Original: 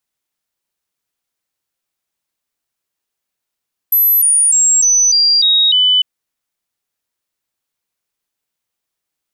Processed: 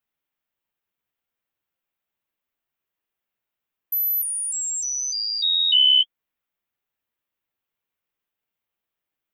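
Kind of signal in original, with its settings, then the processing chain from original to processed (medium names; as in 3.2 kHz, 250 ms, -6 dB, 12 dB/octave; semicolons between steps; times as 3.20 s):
stepped sine 12 kHz down, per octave 3, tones 7, 0.30 s, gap 0.00 s -8 dBFS
flange 1.3 Hz, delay 8 ms, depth 8.7 ms, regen -19%; high-order bell 6.8 kHz -12 dB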